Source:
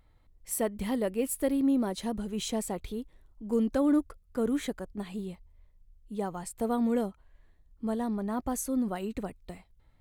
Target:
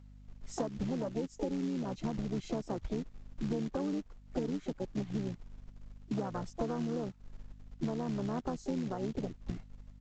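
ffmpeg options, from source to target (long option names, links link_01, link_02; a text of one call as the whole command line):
ffmpeg -i in.wav -filter_complex "[0:a]asplit=3[link_01][link_02][link_03];[link_02]asetrate=29433,aresample=44100,atempo=1.49831,volume=-5dB[link_04];[link_03]asetrate=66075,aresample=44100,atempo=0.66742,volume=-13dB[link_05];[link_01][link_04][link_05]amix=inputs=3:normalize=0,acrossover=split=200[link_06][link_07];[link_06]acompressor=threshold=-30dB:ratio=6[link_08];[link_08][link_07]amix=inputs=2:normalize=0,asplit=2[link_09][link_10];[link_10]alimiter=limit=-23.5dB:level=0:latency=1:release=41,volume=0dB[link_11];[link_09][link_11]amix=inputs=2:normalize=0,afwtdn=0.0398,acrossover=split=540|2600[link_12][link_13][link_14];[link_12]acrusher=bits=4:mode=log:mix=0:aa=0.000001[link_15];[link_15][link_13][link_14]amix=inputs=3:normalize=0,aeval=exprs='val(0)+0.00178*(sin(2*PI*50*n/s)+sin(2*PI*2*50*n/s)/2+sin(2*PI*3*50*n/s)/3+sin(2*PI*4*50*n/s)/4+sin(2*PI*5*50*n/s)/5)':channel_layout=same,acompressor=threshold=-34dB:ratio=16,volume=2.5dB" -ar 16000 -c:a pcm_mulaw out.wav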